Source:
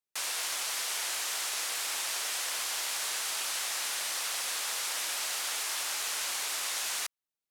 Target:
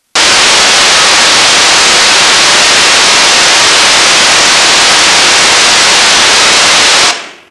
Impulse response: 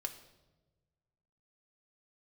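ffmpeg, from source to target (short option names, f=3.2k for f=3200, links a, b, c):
-filter_complex "[0:a]asplit=2[a][b];[1:a]atrim=start_sample=2205,adelay=36[c];[b][c]afir=irnorm=-1:irlink=0,volume=0dB[d];[a][d]amix=inputs=2:normalize=0,asetrate=25476,aresample=44100,atempo=1.73107,apsyclip=34.5dB,volume=-1.5dB"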